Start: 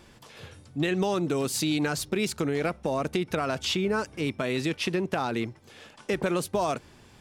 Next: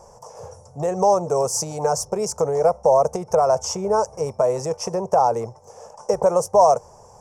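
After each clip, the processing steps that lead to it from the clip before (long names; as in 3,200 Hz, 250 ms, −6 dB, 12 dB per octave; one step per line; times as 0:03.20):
drawn EQ curve 120 Hz 0 dB, 200 Hz −4 dB, 300 Hz −16 dB, 480 Hz +12 dB, 950 Hz +12 dB, 1,600 Hz −12 dB, 3,900 Hz −26 dB, 5,600 Hz +10 dB, 14,000 Hz −6 dB
level +2.5 dB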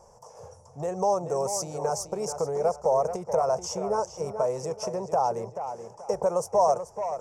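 tape delay 433 ms, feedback 33%, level −8.5 dB, low-pass 4,700 Hz
level −7.5 dB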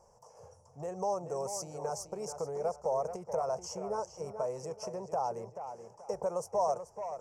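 Butterworth band-reject 3,600 Hz, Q 6.6
level −8.5 dB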